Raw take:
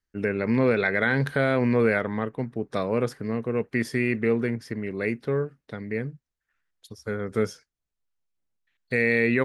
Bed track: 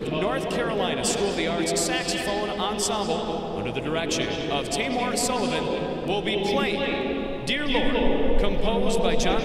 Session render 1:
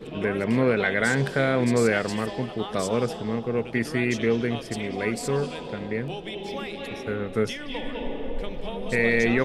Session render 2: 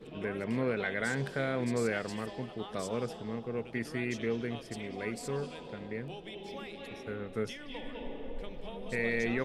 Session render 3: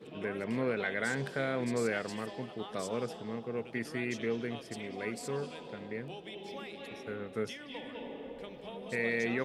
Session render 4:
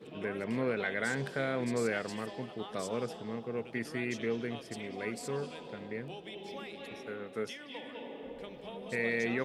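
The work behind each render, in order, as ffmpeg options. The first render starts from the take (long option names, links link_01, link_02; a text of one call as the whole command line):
ffmpeg -i in.wav -i bed.wav -filter_complex "[1:a]volume=-9.5dB[link_01];[0:a][link_01]amix=inputs=2:normalize=0" out.wav
ffmpeg -i in.wav -af "volume=-10dB" out.wav
ffmpeg -i in.wav -af "highpass=78,lowshelf=frequency=130:gain=-5.5" out.wav
ffmpeg -i in.wav -filter_complex "[0:a]asettb=1/sr,asplit=3[link_01][link_02][link_03];[link_01]atrim=end=7.074[link_04];[link_02]atrim=start=7.07:end=8.23,asetpts=PTS-STARTPTS,afade=type=in:duration=0.004:curve=qsin,afade=type=out:start_time=1.156:duration=0.004:curve=qsin,highpass=frequency=230:poles=1[link_05];[link_03]atrim=start=8.226[link_06];[link_04][link_05]acrossfade=duration=0.004:curve1=hsin:curve2=qsin[link_07];[link_07][link_06]acrossfade=duration=0.004:curve1=qsin:curve2=hsin" out.wav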